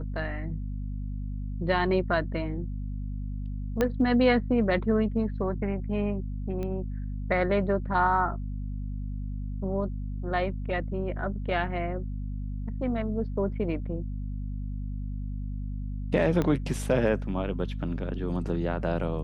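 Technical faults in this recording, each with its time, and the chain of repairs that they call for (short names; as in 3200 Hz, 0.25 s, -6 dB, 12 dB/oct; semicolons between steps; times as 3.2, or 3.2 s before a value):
hum 50 Hz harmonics 5 -33 dBFS
3.81 pop -12 dBFS
6.63 pop -23 dBFS
16.42 pop -15 dBFS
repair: de-click; de-hum 50 Hz, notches 5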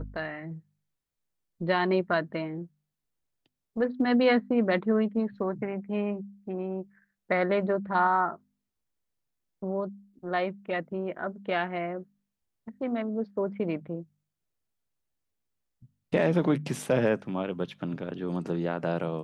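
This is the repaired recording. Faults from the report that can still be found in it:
3.81 pop
6.63 pop
16.42 pop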